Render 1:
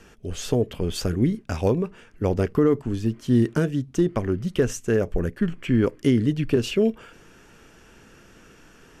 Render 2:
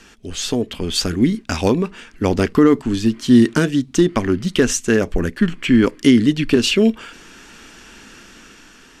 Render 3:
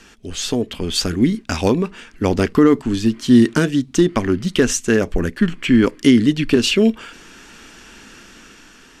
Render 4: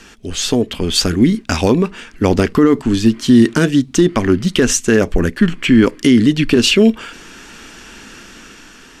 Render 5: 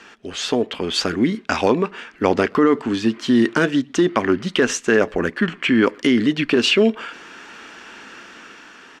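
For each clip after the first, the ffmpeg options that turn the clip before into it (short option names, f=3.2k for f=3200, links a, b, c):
-af "equalizer=f=125:t=o:w=1:g=-7,equalizer=f=250:t=o:w=1:g=6,equalizer=f=500:t=o:w=1:g=-4,equalizer=f=1k:t=o:w=1:g=3,equalizer=f=2k:t=o:w=1:g=4,equalizer=f=4k:t=o:w=1:g=9,equalizer=f=8k:t=o:w=1:g=6,dynaudnorm=f=480:g=5:m=6.5dB,volume=1dB"
-af anull
-af "alimiter=level_in=6dB:limit=-1dB:release=50:level=0:latency=1,volume=-1dB"
-filter_complex "[0:a]bandpass=f=1.1k:t=q:w=0.53:csg=0,asplit=2[a][b];[b]adelay=120,highpass=300,lowpass=3.4k,asoftclip=type=hard:threshold=-11dB,volume=-27dB[c];[a][c]amix=inputs=2:normalize=0,volume=1dB"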